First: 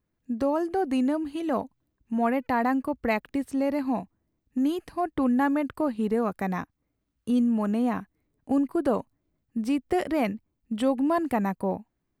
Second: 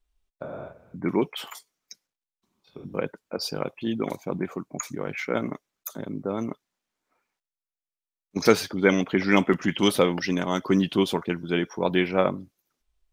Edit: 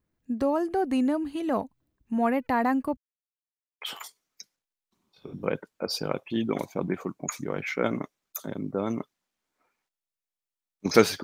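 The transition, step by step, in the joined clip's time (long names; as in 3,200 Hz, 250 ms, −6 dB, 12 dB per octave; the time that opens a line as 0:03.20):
first
0:02.97–0:03.81: silence
0:03.81: continue with second from 0:01.32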